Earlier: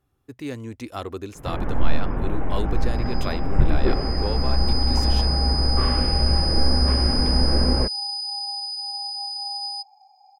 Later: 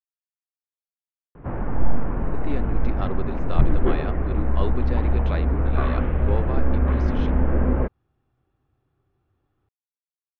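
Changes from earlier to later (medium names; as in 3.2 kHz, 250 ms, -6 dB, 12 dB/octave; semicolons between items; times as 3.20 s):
speech: entry +2.05 s; second sound: muted; master: add Gaussian low-pass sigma 2.4 samples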